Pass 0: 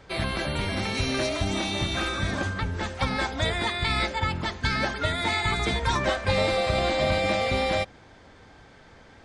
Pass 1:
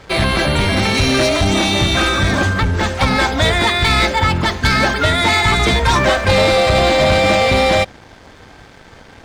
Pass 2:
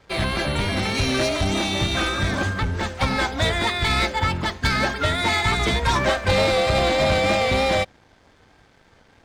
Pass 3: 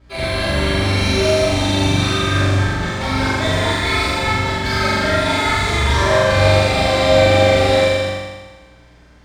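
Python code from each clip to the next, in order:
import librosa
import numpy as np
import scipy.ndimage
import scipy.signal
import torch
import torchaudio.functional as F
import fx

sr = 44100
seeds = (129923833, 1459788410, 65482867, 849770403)

y1 = fx.leveller(x, sr, passes=2)
y1 = F.gain(torch.from_numpy(y1), 6.5).numpy()
y2 = fx.vibrato(y1, sr, rate_hz=3.3, depth_cents=29.0)
y2 = fx.upward_expand(y2, sr, threshold_db=-27.0, expansion=1.5)
y2 = F.gain(torch.from_numpy(y2), -5.5).numpy()
y3 = fx.room_flutter(y2, sr, wall_m=7.1, rt60_s=1.3)
y3 = fx.add_hum(y3, sr, base_hz=60, snr_db=30)
y3 = fx.rev_gated(y3, sr, seeds[0], gate_ms=430, shape='falling', drr_db=-7.5)
y3 = F.gain(torch.from_numpy(y3), -8.0).numpy()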